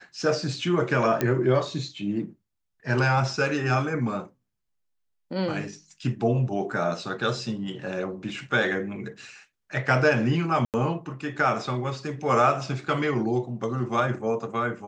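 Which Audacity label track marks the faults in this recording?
1.210000	1.210000	click −10 dBFS
10.650000	10.740000	drop-out 88 ms

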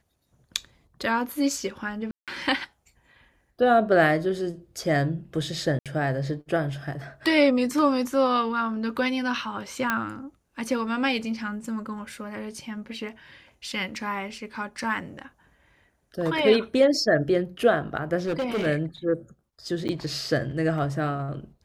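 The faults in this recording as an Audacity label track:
2.110000	2.280000	drop-out 167 ms
5.790000	5.860000	drop-out 67 ms
9.900000	9.900000	click −10 dBFS
18.250000	18.670000	clipping −23 dBFS
19.880000	19.890000	drop-out 9 ms

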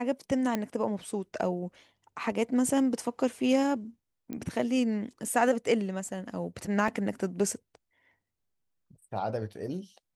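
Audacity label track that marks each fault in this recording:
0.550000	0.550000	click −15 dBFS
4.330000	4.330000	click −24 dBFS
6.880000	6.880000	drop-out 2.7 ms

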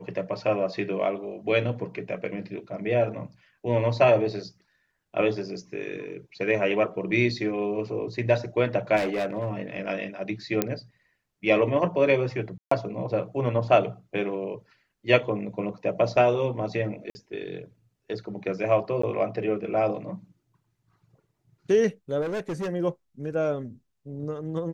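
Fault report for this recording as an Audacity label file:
8.960000	9.520000	clipping −23 dBFS
10.620000	10.620000	click −8 dBFS
12.580000	12.710000	drop-out 134 ms
17.100000	17.150000	drop-out 50 ms
19.020000	19.030000	drop-out 14 ms
22.210000	22.690000	clipping −27 dBFS

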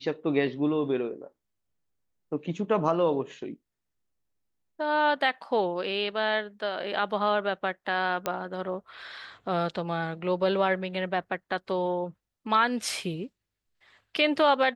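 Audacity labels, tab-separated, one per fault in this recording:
8.260000	8.260000	click −13 dBFS

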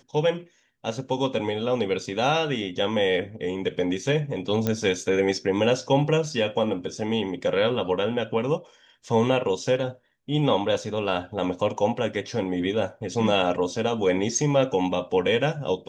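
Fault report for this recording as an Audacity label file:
4.670000	4.670000	click −11 dBFS

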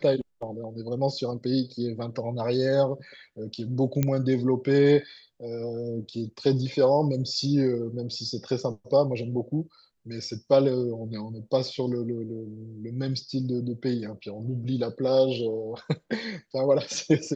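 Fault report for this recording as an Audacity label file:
4.030000	4.030000	click −11 dBFS

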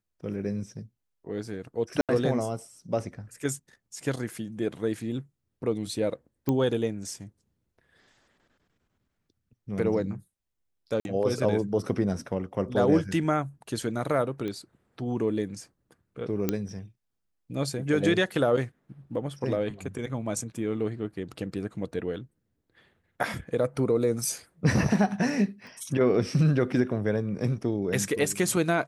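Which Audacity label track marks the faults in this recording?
2.010000	2.090000	drop-out 77 ms
6.490000	6.490000	click −14 dBFS
11.000000	11.050000	drop-out 51 ms
14.480000	14.480000	click −22 dBFS
16.490000	16.490000	click −11 dBFS
25.670000	25.670000	click

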